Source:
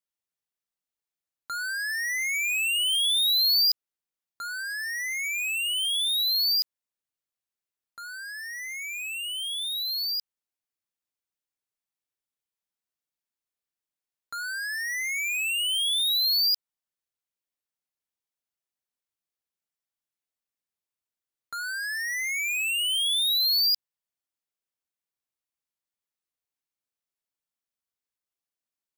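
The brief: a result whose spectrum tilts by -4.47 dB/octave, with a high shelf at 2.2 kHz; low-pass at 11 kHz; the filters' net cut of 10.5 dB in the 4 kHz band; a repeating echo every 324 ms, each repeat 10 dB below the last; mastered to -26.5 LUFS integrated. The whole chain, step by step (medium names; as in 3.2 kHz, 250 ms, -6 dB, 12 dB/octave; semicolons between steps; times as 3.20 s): low-pass 11 kHz; treble shelf 2.2 kHz -8 dB; peaking EQ 4 kHz -5.5 dB; feedback delay 324 ms, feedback 32%, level -10 dB; trim +7 dB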